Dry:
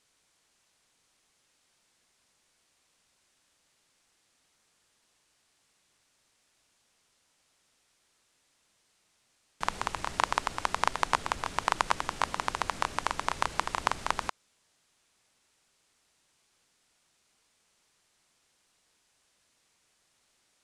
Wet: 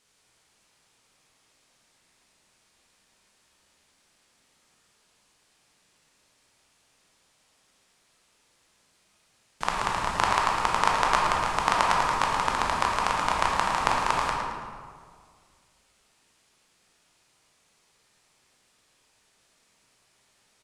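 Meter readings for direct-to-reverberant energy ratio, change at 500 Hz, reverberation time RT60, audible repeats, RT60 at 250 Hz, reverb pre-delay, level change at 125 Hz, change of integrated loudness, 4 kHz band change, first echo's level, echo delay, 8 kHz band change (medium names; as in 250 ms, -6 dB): -2.5 dB, +7.0 dB, 1.9 s, 1, 2.0 s, 15 ms, +7.5 dB, +6.5 dB, +5.0 dB, -9.0 dB, 110 ms, +4.5 dB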